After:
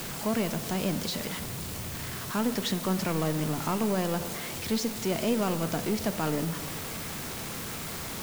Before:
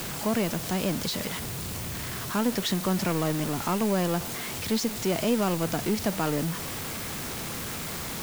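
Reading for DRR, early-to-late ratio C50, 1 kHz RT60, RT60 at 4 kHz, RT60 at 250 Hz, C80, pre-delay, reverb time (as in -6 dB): 11.0 dB, 13.0 dB, 2.2 s, 0.95 s, 2.2 s, 14.5 dB, 3 ms, 2.2 s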